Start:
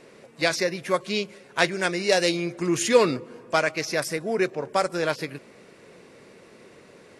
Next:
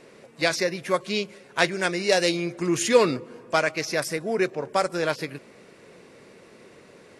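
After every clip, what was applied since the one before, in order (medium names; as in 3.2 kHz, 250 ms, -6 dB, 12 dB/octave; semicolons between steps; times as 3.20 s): no audible change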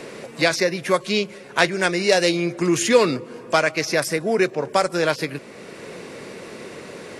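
three bands compressed up and down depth 40%; trim +4.5 dB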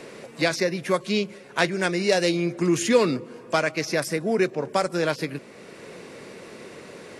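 dynamic bell 210 Hz, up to +5 dB, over -34 dBFS, Q 0.83; trim -5 dB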